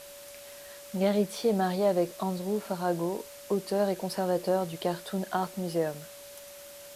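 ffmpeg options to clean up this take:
-af "adeclick=t=4,bandreject=f=570:w=30,afwtdn=0.004"

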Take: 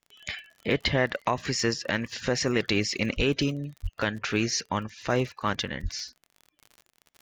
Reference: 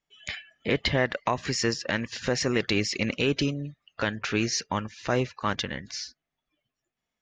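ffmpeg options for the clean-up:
-filter_complex "[0:a]adeclick=t=4,asplit=3[s0][s1][s2];[s0]afade=t=out:st=3.16:d=0.02[s3];[s1]highpass=f=140:w=0.5412,highpass=f=140:w=1.3066,afade=t=in:st=3.16:d=0.02,afade=t=out:st=3.28:d=0.02[s4];[s2]afade=t=in:st=3.28:d=0.02[s5];[s3][s4][s5]amix=inputs=3:normalize=0,asplit=3[s6][s7][s8];[s6]afade=t=out:st=3.82:d=0.02[s9];[s7]highpass=f=140:w=0.5412,highpass=f=140:w=1.3066,afade=t=in:st=3.82:d=0.02,afade=t=out:st=3.94:d=0.02[s10];[s8]afade=t=in:st=3.94:d=0.02[s11];[s9][s10][s11]amix=inputs=3:normalize=0,asplit=3[s12][s13][s14];[s12]afade=t=out:st=5.82:d=0.02[s15];[s13]highpass=f=140:w=0.5412,highpass=f=140:w=1.3066,afade=t=in:st=5.82:d=0.02,afade=t=out:st=5.94:d=0.02[s16];[s14]afade=t=in:st=5.94:d=0.02[s17];[s15][s16][s17]amix=inputs=3:normalize=0"

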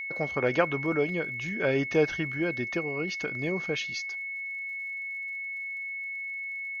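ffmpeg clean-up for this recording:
-af "adeclick=t=4,bandreject=f=2200:w=30"

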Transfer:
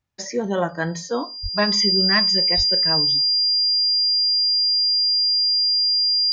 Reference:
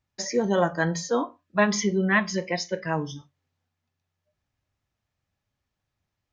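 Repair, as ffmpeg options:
-filter_complex "[0:a]bandreject=f=4800:w=30,asplit=3[s0][s1][s2];[s0]afade=t=out:st=1.42:d=0.02[s3];[s1]highpass=f=140:w=0.5412,highpass=f=140:w=1.3066,afade=t=in:st=1.42:d=0.02,afade=t=out:st=1.54:d=0.02[s4];[s2]afade=t=in:st=1.54:d=0.02[s5];[s3][s4][s5]amix=inputs=3:normalize=0,asplit=3[s6][s7][s8];[s6]afade=t=out:st=2.56:d=0.02[s9];[s7]highpass=f=140:w=0.5412,highpass=f=140:w=1.3066,afade=t=in:st=2.56:d=0.02,afade=t=out:st=2.68:d=0.02[s10];[s8]afade=t=in:st=2.68:d=0.02[s11];[s9][s10][s11]amix=inputs=3:normalize=0"

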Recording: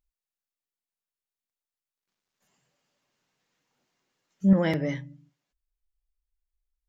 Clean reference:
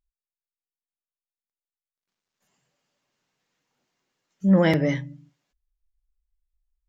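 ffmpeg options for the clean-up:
-af "asetnsamples=n=441:p=0,asendcmd='4.53 volume volume 6dB',volume=1"

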